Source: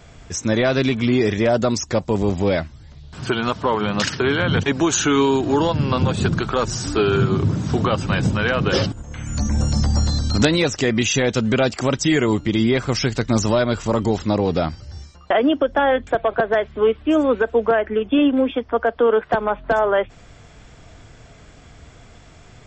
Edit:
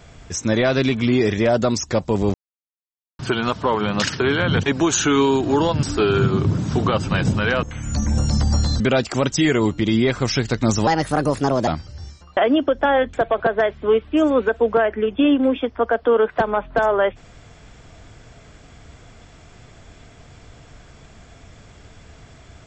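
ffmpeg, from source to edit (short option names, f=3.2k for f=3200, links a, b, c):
-filter_complex "[0:a]asplit=8[a][b][c][d][e][f][g][h];[a]atrim=end=2.34,asetpts=PTS-STARTPTS,afade=t=out:st=2.336:d=0.004:c=hsin[i];[b]atrim=start=2.34:end=3.19,asetpts=PTS-STARTPTS,volume=0[j];[c]atrim=start=3.19:end=5.832,asetpts=PTS-STARTPTS,afade=t=in:d=0.004:c=hsin[k];[d]atrim=start=6.808:end=8.612[l];[e]atrim=start=9.058:end=10.232[m];[f]atrim=start=11.468:end=13.544[n];[g]atrim=start=13.54:end=14.61,asetpts=PTS-STARTPTS,asetrate=58653,aresample=44100[o];[h]atrim=start=14.606[p];[i][j][k]concat=n=3:v=0:a=1[q];[q][l]acrossfade=d=0.004:c1=hsin:c2=hsin[r];[r][m]acrossfade=d=0.004:c1=hsin:c2=hsin[s];[s][n]acrossfade=d=0.004:c1=hsin:c2=hsin[t];[t][o]acrossfade=d=0.004:c1=hsin:c2=hsin[u];[u][p]acrossfade=d=0.004:c1=hsin:c2=hsin"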